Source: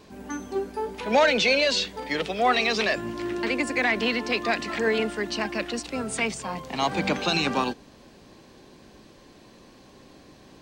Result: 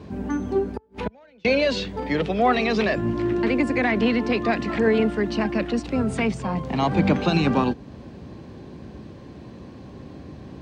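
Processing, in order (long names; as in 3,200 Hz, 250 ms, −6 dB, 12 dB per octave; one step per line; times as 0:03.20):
0:00.68–0:01.45: gate with flip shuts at −22 dBFS, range −38 dB
in parallel at −2.5 dB: downward compressor, threshold −36 dBFS, peak gain reduction 18 dB
on the sum: high-pass filter 69 Hz 24 dB per octave
RIAA equalisation playback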